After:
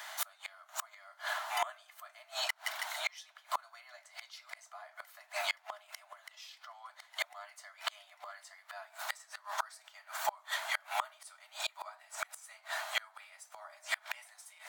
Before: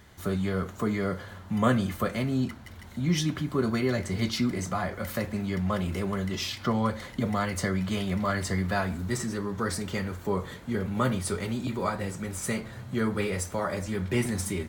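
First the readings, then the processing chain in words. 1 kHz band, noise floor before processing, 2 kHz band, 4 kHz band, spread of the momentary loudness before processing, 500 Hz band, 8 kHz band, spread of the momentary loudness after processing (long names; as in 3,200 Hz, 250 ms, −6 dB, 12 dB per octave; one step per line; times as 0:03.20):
−6.0 dB, −46 dBFS, −3.5 dB, −3.0 dB, 5 LU, −17.5 dB, −7.5 dB, 17 LU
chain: Chebyshev high-pass filter 610 Hz, order 10
gate with flip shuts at −32 dBFS, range −31 dB
level +13 dB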